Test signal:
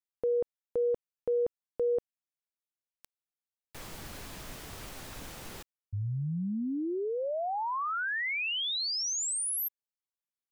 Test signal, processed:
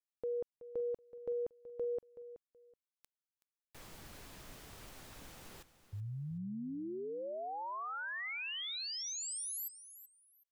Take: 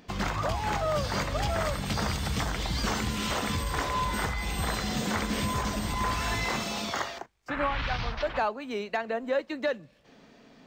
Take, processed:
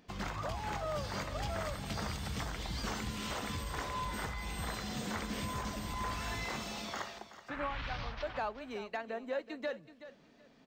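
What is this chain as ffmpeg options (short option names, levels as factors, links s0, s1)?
-af "aecho=1:1:376|752:0.2|0.0439,volume=0.355"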